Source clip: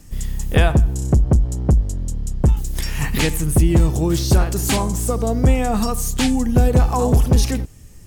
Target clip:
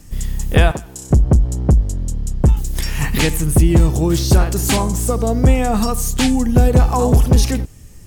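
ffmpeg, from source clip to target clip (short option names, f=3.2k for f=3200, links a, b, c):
-filter_complex "[0:a]asettb=1/sr,asplit=3[a][b][c];[a]atrim=end=0.714[d];[b]atrim=start=0.71:end=1.11,asetpts=PTS-STARTPTS,afade=t=in:d=0.004:c=qsin,afade=t=out:st=0.396:d=0.004:c=qsin,highpass=f=870:p=1[e];[c]atrim=start=1.106[f];[d][e]acrossfade=d=0.004:c1=hsin:c2=qsin[g];[g][f]acrossfade=d=0.004:c1=qsin:c2=hsin,volume=2.5dB"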